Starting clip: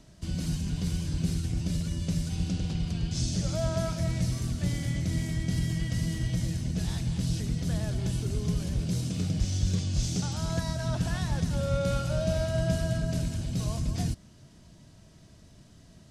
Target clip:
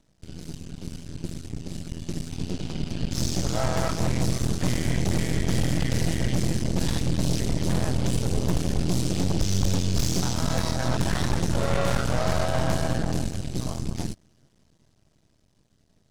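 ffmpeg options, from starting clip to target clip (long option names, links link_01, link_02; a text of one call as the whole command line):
ffmpeg -i in.wav -af "dynaudnorm=framelen=290:gausssize=21:maxgain=11.5dB,aeval=exprs='0.398*(cos(1*acos(clip(val(0)/0.398,-1,1)))-cos(1*PI/2))+0.126*(cos(6*acos(clip(val(0)/0.398,-1,1)))-cos(6*PI/2))':channel_layout=same,aeval=exprs='max(val(0),0)':channel_layout=same,volume=-8dB" out.wav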